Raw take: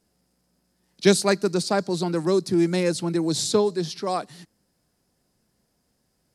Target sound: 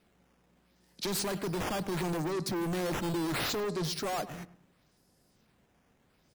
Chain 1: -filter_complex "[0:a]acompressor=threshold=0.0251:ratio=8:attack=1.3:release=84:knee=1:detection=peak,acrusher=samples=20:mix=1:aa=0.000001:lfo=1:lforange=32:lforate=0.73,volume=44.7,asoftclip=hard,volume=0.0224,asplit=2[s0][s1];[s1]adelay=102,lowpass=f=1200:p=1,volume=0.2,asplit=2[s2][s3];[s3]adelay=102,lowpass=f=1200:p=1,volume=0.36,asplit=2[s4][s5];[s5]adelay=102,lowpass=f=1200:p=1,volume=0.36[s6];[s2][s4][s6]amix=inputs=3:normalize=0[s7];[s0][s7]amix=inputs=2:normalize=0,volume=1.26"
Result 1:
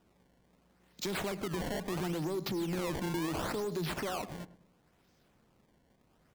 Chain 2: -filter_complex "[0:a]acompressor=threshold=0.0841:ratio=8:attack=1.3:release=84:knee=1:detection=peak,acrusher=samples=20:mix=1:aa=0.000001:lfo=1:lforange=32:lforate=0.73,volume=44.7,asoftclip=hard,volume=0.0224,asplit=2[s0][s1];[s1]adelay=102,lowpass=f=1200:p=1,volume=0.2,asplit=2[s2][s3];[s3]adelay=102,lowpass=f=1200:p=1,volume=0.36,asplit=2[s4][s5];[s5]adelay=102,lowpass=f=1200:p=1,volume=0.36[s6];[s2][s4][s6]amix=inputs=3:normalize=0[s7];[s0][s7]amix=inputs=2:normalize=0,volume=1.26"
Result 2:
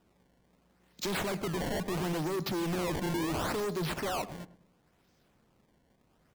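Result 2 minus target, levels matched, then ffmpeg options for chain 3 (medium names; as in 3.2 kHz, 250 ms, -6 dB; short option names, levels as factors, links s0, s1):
decimation with a swept rate: distortion +6 dB
-filter_complex "[0:a]acompressor=threshold=0.0841:ratio=8:attack=1.3:release=84:knee=1:detection=peak,acrusher=samples=6:mix=1:aa=0.000001:lfo=1:lforange=9.6:lforate=0.73,volume=44.7,asoftclip=hard,volume=0.0224,asplit=2[s0][s1];[s1]adelay=102,lowpass=f=1200:p=1,volume=0.2,asplit=2[s2][s3];[s3]adelay=102,lowpass=f=1200:p=1,volume=0.36,asplit=2[s4][s5];[s5]adelay=102,lowpass=f=1200:p=1,volume=0.36[s6];[s2][s4][s6]amix=inputs=3:normalize=0[s7];[s0][s7]amix=inputs=2:normalize=0,volume=1.26"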